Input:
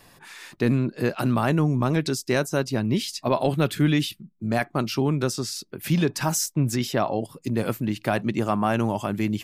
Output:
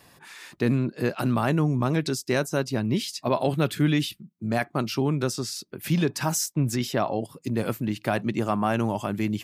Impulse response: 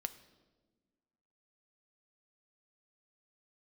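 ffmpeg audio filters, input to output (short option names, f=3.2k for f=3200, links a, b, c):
-af "highpass=44,volume=-1.5dB"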